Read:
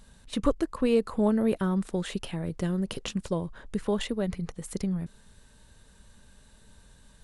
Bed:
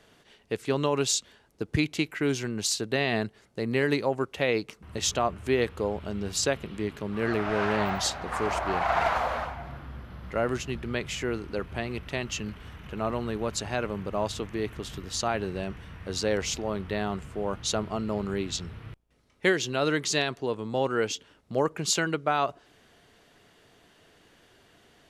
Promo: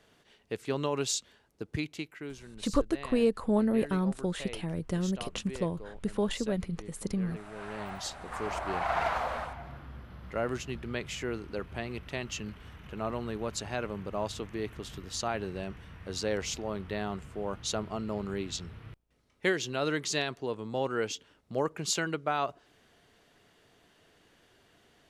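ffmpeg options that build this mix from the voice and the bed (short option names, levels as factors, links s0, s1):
-filter_complex "[0:a]adelay=2300,volume=0.794[s0];[1:a]volume=2.51,afade=t=out:st=1.39:d=1:silence=0.237137,afade=t=in:st=7.52:d=1.29:silence=0.223872[s1];[s0][s1]amix=inputs=2:normalize=0"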